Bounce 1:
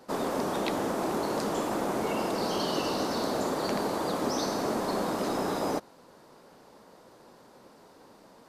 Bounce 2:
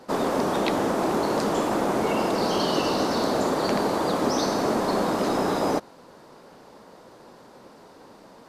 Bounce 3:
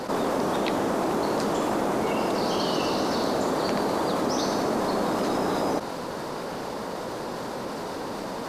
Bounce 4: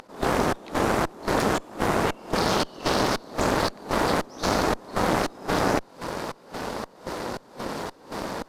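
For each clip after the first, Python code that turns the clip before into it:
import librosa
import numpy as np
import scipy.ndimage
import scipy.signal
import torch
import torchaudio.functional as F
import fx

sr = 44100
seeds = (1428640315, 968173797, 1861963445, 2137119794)

y1 = fx.high_shelf(x, sr, hz=8600.0, db=-6.5)
y1 = y1 * 10.0 ** (6.0 / 20.0)
y2 = fx.env_flatten(y1, sr, amount_pct=70)
y2 = y2 * 10.0 ** (-3.5 / 20.0)
y3 = fx.volume_shaper(y2, sr, bpm=114, per_beat=1, depth_db=-23, release_ms=222.0, shape='slow start')
y3 = fx.cheby_harmonics(y3, sr, harmonics=(4,), levels_db=(-6,), full_scale_db=-13.0)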